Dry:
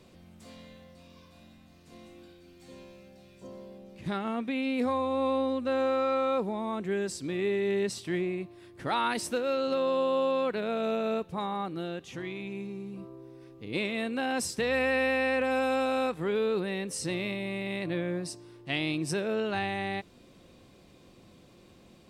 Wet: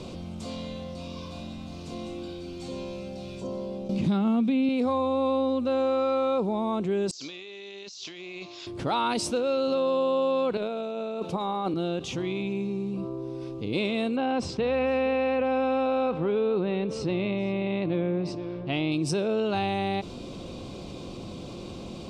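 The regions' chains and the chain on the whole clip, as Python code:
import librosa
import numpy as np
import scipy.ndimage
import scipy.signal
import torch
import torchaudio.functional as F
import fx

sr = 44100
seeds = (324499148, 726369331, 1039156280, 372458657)

y = fx.chain(x, sr, fx.peak_eq(hz=210.0, db=10.5, octaves=0.79),
    fx.band_squash(depth_pct=70), at=(3.89, 4.69))
y = fx.chain(y, sr, fx.steep_lowpass(hz=7000.0, slope=96),
    fx.differentiator(),
    fx.over_compress(threshold_db=-59.0, ratio=-1.0), at=(7.11, 8.67))
y = fx.chain(y, sr, fx.highpass(hz=210.0, slope=12),
    fx.over_compress(threshold_db=-36.0, ratio=-0.5), at=(10.57, 11.74))
y = fx.chain(y, sr, fx.lowpass(hz=2700.0, slope=12),
    fx.echo_single(ms=468, db=-18.0), at=(14.16, 18.92))
y = scipy.signal.sosfilt(scipy.signal.butter(2, 6500.0, 'lowpass', fs=sr, output='sos'), y)
y = fx.peak_eq(y, sr, hz=1800.0, db=-14.0, octaves=0.55)
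y = fx.env_flatten(y, sr, amount_pct=50)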